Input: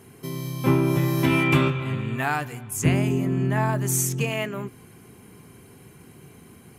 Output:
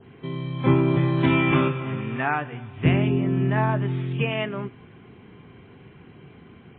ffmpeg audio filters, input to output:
-filter_complex "[0:a]adynamicequalizer=threshold=0.0112:dfrequency=2200:dqfactor=2:tfrequency=2200:tqfactor=2:attack=5:release=100:ratio=0.375:range=2:mode=cutabove:tftype=bell,asettb=1/sr,asplit=3[a][b][c];[a]atrim=end=1.514[d];[b]atrim=start=1.51:end=2.52,asetpts=PTS-STARTPTS,afade=t=in:d=0.004:c=qsin,afade=t=out:st=1.006:d=0.004:c=qsin,highpass=140,lowpass=2.9k[e];[c]atrim=start=2.516[f];[d][e]acrossfade=d=0.004:c1=hsin:c2=qsin[g];[g][f]acrossfade=d=0.004:c1=qsin:c2=hsin,volume=1.5dB" -ar 8000 -c:a libmp3lame -b:a 16k

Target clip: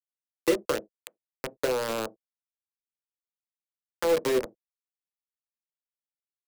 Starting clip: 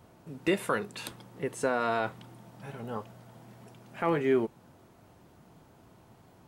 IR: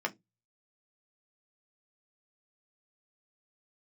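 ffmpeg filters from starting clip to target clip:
-filter_complex "[0:a]acrusher=bits=3:mix=0:aa=0.000001,acrossover=split=84|230[a][b][c];[a]acompressor=threshold=-48dB:ratio=4[d];[b]acompressor=threshold=-47dB:ratio=4[e];[c]acompressor=threshold=-27dB:ratio=4[f];[d][e][f]amix=inputs=3:normalize=0,asplit=2[g][h];[h]lowpass=f=520:t=q:w=4.9[i];[1:a]atrim=start_sample=2205,atrim=end_sample=4410[j];[i][j]afir=irnorm=-1:irlink=0,volume=-7.5dB[k];[g][k]amix=inputs=2:normalize=0"

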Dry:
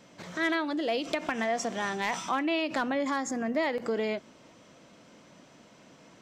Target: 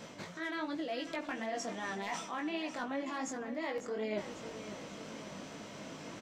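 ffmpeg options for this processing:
-af "areverse,acompressor=threshold=-44dB:ratio=10,areverse,flanger=delay=18:depth=2.5:speed=2.7,aecho=1:1:547|1094|1641|2188|2735:0.266|0.128|0.0613|0.0294|0.0141,volume=11dB"

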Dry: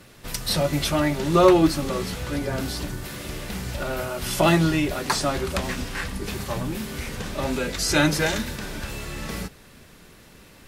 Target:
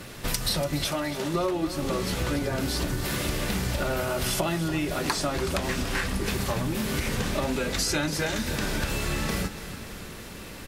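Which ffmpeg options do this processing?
-filter_complex "[0:a]acompressor=threshold=-32dB:ratio=12,asettb=1/sr,asplit=3[a][b][c];[a]atrim=end=0.844[d];[b]atrim=start=0.84:end=1.34,asetpts=PTS-STARTPTS,afade=t=in:d=0.004:c=qsin,afade=t=out:st=0.496:d=0.004:c=qsin,highpass=f=270:p=1[e];[c]atrim=start=1.336[f];[d][e]acrossfade=d=0.004:c1=hsin:c2=qsin[g];[g][f]acrossfade=d=0.004:c1=qsin:c2=hsin,aecho=1:1:288|576|864|1152|1440|1728|2016:0.224|0.134|0.0806|0.0484|0.029|0.0174|0.0104,volume=8dB"

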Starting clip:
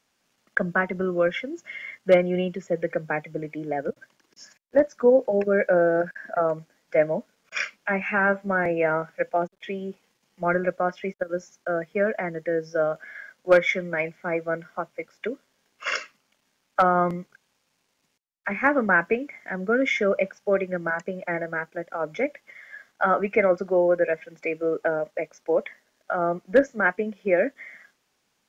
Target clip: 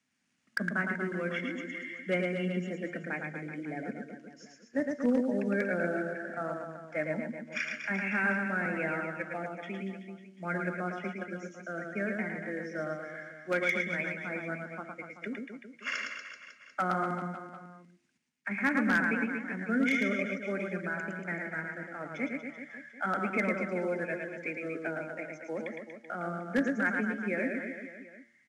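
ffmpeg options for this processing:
-filter_complex "[0:a]equalizer=f=125:t=o:w=1:g=4,equalizer=f=500:t=o:w=1:g=-8,equalizer=f=1k:t=o:w=1:g=-5,equalizer=f=2k:t=o:w=1:g=5,equalizer=f=4k:t=o:w=1:g=-4,acrossover=split=160|2400[a][b][c];[a]acompressor=threshold=-51dB:ratio=10[d];[d][b][c]amix=inputs=3:normalize=0,bandreject=f=115.7:t=h:w=4,bandreject=f=231.4:t=h:w=4,bandreject=f=347.1:t=h:w=4,bandreject=f=462.8:t=h:w=4,bandreject=f=578.5:t=h:w=4,bandreject=f=694.2:t=h:w=4,bandreject=f=809.9:t=h:w=4,bandreject=f=925.6:t=h:w=4,bandreject=f=1.0413k:t=h:w=4,bandreject=f=1.157k:t=h:w=4,bandreject=f=1.2727k:t=h:w=4,bandreject=f=1.3884k:t=h:w=4,bandreject=f=1.5041k:t=h:w=4,bandreject=f=1.6198k:t=h:w=4,bandreject=f=1.7355k:t=h:w=4,bandreject=f=1.8512k:t=h:w=4,bandreject=f=1.9669k:t=h:w=4,bandreject=f=2.0826k:t=h:w=4,bandreject=f=2.1983k:t=h:w=4,bandreject=f=2.314k:t=h:w=4,acrusher=bits=8:mode=log:mix=0:aa=0.000001,highpass=f=61:w=0.5412,highpass=f=61:w=1.3066,equalizer=f=240:t=o:w=0.48:g=10.5,asplit=2[e][f];[f]aecho=0:1:110|236.5|382|549.3|741.7:0.631|0.398|0.251|0.158|0.1[g];[e][g]amix=inputs=2:normalize=0,aresample=22050,aresample=44100,aeval=exprs='0.282*(abs(mod(val(0)/0.282+3,4)-2)-1)':c=same,volume=-8dB"

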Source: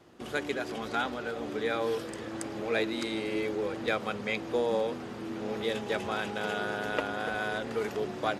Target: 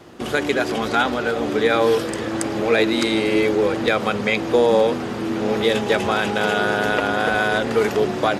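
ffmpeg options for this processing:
-af "alimiter=level_in=19dB:limit=-1dB:release=50:level=0:latency=1,volume=-5.5dB"

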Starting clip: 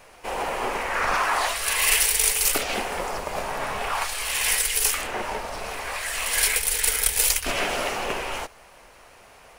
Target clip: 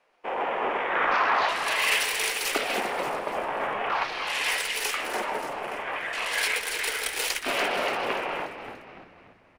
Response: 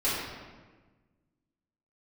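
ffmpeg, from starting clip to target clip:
-filter_complex "[0:a]afwtdn=0.0178,acrossover=split=190 4600:gain=0.0708 1 0.2[a][b][c];[a][b][c]amix=inputs=3:normalize=0,asplit=6[d][e][f][g][h][i];[e]adelay=290,afreqshift=-72,volume=-9.5dB[j];[f]adelay=580,afreqshift=-144,volume=-16.1dB[k];[g]adelay=870,afreqshift=-216,volume=-22.6dB[l];[h]adelay=1160,afreqshift=-288,volume=-29.2dB[m];[i]adelay=1450,afreqshift=-360,volume=-35.7dB[n];[d][j][k][l][m][n]amix=inputs=6:normalize=0"

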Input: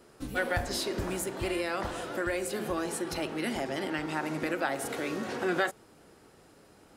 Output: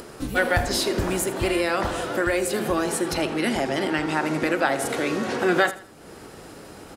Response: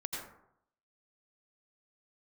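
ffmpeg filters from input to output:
-filter_complex "[0:a]aecho=1:1:81|162|243:0.158|0.0507|0.0162,acompressor=mode=upward:threshold=-42dB:ratio=2.5,asettb=1/sr,asplit=3[a][b][c];[a]atrim=end=3.134[d];[b]atrim=start=3.13:end=5.39,asetpts=PTS-STARTPTS,afade=t=in:d=0.004:c=qsin,afade=t=out:st=2.256:d=0.004:c=qsin,lowpass=12k[e];[c]atrim=start=5.386[f];[d][e]acrossfade=d=0.004:c1=hsin:c2=qsin[g];[g][f]acrossfade=d=0.004:c1=qsin:c2=hsin,volume=8.5dB"

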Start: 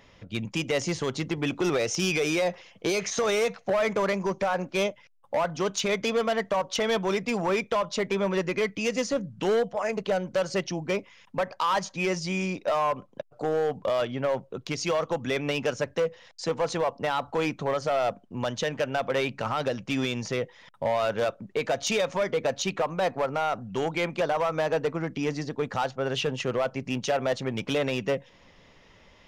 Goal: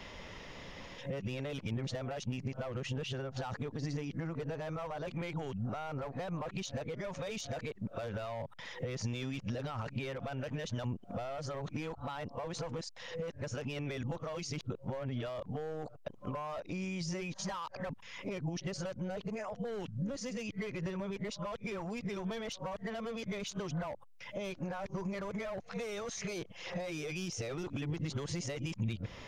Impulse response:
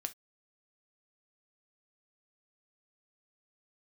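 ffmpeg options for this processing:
-filter_complex "[0:a]areverse,alimiter=level_in=5dB:limit=-24dB:level=0:latency=1:release=41,volume=-5dB,acrossover=split=130[a][b];[b]acompressor=threshold=-46dB:ratio=8[c];[a][c]amix=inputs=2:normalize=0,volume=7.5dB"

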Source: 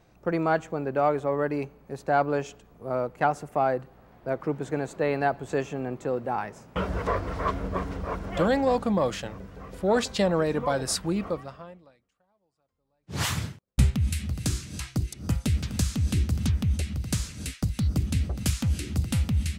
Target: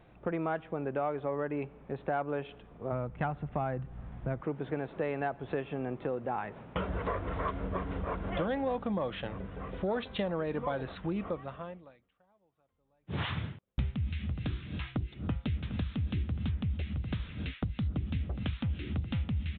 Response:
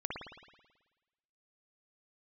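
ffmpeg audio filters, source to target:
-filter_complex "[0:a]asplit=3[a][b][c];[a]afade=t=out:st=2.91:d=0.02[d];[b]asubboost=boost=6.5:cutoff=170,afade=t=in:st=2.91:d=0.02,afade=t=out:st=4.4:d=0.02[e];[c]afade=t=in:st=4.4:d=0.02[f];[d][e][f]amix=inputs=3:normalize=0,acompressor=threshold=-34dB:ratio=3,aresample=8000,aresample=44100,volume=1.5dB"

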